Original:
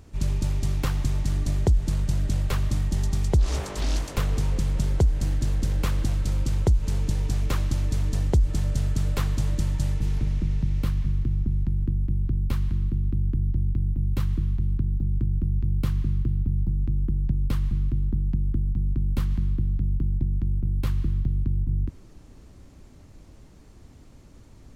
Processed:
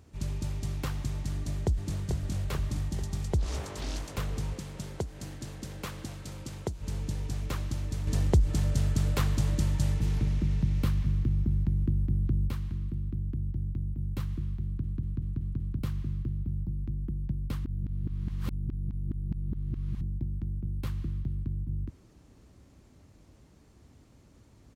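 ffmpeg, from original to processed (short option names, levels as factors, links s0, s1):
-filter_complex "[0:a]asplit=2[s0][s1];[s1]afade=t=in:st=1.33:d=0.01,afade=t=out:st=2:d=0.01,aecho=0:1:440|880|1320|1760|2200|2640|3080|3520|3960|4400:0.530884|0.345075|0.224299|0.145794|0.0947662|0.061598|0.0400387|0.0260252|0.0169164|0.0109956[s2];[s0][s2]amix=inputs=2:normalize=0,asettb=1/sr,asplit=3[s3][s4][s5];[s3]atrim=end=4.534[s6];[s4]atrim=start=4.53:end=6.81,asetpts=PTS-STARTPTS,afade=t=in:d=0.004:c=qsin,afade=t=out:st=2.276:d=0.004:c=qsin,highpass=f=220:p=1[s7];[s5]atrim=start=6.806[s8];[s6][s7]acrossfade=d=0.004:c1=hsin:c2=qsin[s9];[s9][s8]acrossfade=d=0.004:c1=qsin:c2=hsin,asettb=1/sr,asplit=3[s10][s11][s12];[s10]atrim=end=8.074[s13];[s11]atrim=start=8.07:end=12.5,asetpts=PTS-STARTPTS,afade=t=in:d=0.004:c=qsin,afade=t=out:st=4.426:d=0.004:c=qsin,acontrast=55[s14];[s12]atrim=start=12.496[s15];[s13][s14]acrossfade=d=0.004:c1=hsin:c2=qsin[s16];[s16][s15]acrossfade=d=0.004:c1=qsin:c2=hsin,asplit=9[s17][s18][s19][s20][s21][s22][s23][s24][s25];[s17]atrim=end=14.842[s26];[s18]atrim=start=14.648:end=14.842[s27];[s19]atrim=start=14.648:end=14.842[s28];[s20]atrim=start=14.648:end=14.842[s29];[s21]atrim=start=14.648:end=14.842[s30];[s22]atrim=start=14.648:end=14.842[s31];[s23]atrim=start=15.788:end=17.652[s32];[s24]atrim=start=17.648:end=20.012,asetpts=PTS-STARTPTS,areverse[s33];[s25]atrim=start=20.008[s34];[s26][s27]acrossfade=d=0.004:c1=hsin:c2=hsin[s35];[s35][s28]acrossfade=d=0.004:c1=hsin:c2=hsin[s36];[s36][s29]acrossfade=d=0.004:c1=hsin:c2=hsin[s37];[s37][s30]acrossfade=d=0.004:c1=hsin:c2=hsin[s38];[s38][s31]acrossfade=d=0.004:c1=hsin:c2=hsin[s39];[s39][s32]acrossfade=d=0.004:c1=hsin:c2=hsin[s40];[s40][s33]acrossfade=d=0.004:c1=hsin:c2=hsin[s41];[s41][s34]acrossfade=d=0.004:c1=hsin:c2=hsin,highpass=54,volume=0.501"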